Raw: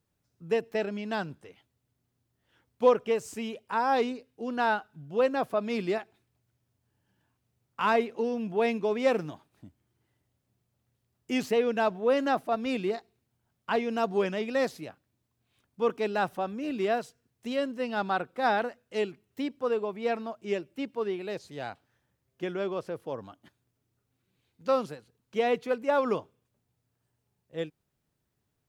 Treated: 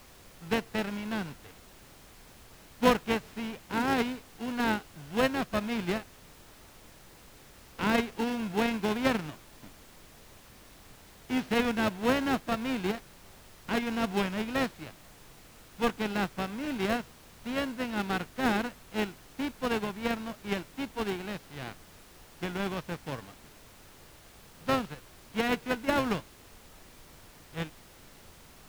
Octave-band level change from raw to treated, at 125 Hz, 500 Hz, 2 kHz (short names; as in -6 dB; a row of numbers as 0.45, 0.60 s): +5.0, -5.5, +1.5 dB